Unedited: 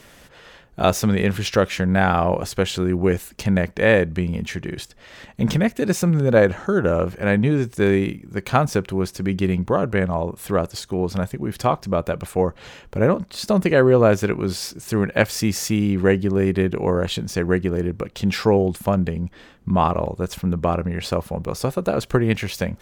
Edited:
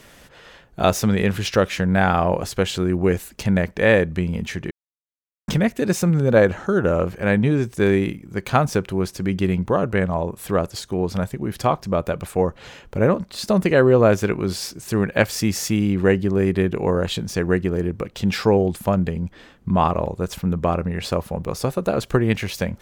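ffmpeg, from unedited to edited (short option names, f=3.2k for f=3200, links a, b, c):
-filter_complex "[0:a]asplit=3[a][b][c];[a]atrim=end=4.71,asetpts=PTS-STARTPTS,afade=t=out:st=4.706:d=0.004:c=hsin[d];[b]atrim=start=4.71:end=5.48,asetpts=PTS-STARTPTS,volume=0[e];[c]atrim=start=5.48,asetpts=PTS-STARTPTS,afade=t=in:d=0.004:c=hsin[f];[d][e][f]concat=n=3:v=0:a=1"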